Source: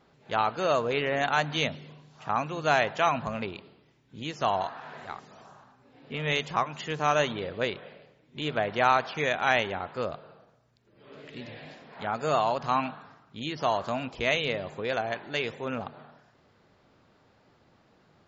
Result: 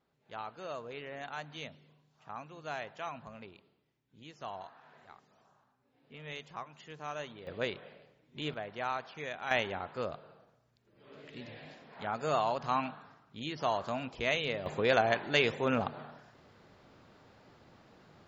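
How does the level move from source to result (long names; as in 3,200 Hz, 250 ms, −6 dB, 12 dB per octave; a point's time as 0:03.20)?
−16 dB
from 0:07.47 −5.5 dB
from 0:08.54 −13 dB
from 0:09.51 −5 dB
from 0:14.66 +3 dB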